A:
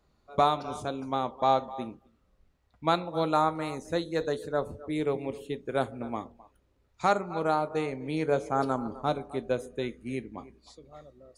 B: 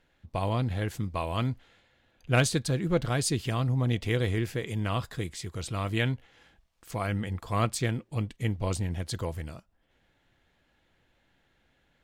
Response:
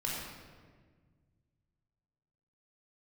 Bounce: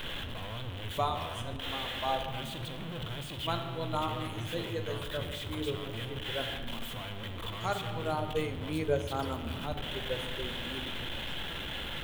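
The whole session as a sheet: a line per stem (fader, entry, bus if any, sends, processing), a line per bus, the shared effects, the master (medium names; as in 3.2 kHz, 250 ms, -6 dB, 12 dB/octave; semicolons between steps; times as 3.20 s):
-1.0 dB, 0.60 s, send -14.5 dB, expander on every frequency bin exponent 1.5; auto duck -9 dB, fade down 1.30 s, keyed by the second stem
-12.0 dB, 0.00 s, send -8 dB, one-bit comparator; FFT filter 2.3 kHz 0 dB, 3.3 kHz +10 dB, 4.8 kHz -15 dB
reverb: on, RT60 1.6 s, pre-delay 17 ms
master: treble shelf 7.9 kHz +11 dB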